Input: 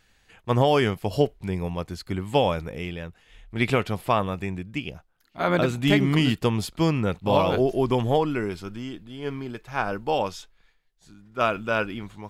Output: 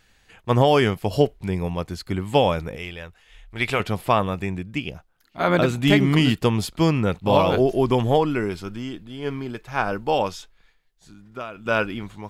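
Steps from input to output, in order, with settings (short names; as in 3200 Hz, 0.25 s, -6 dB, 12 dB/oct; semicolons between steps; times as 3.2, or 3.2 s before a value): 2.76–3.8 bell 200 Hz -10.5 dB 2.3 oct; 10.31–11.66 compressor 4:1, threshold -36 dBFS, peak gain reduction 16 dB; gain +3 dB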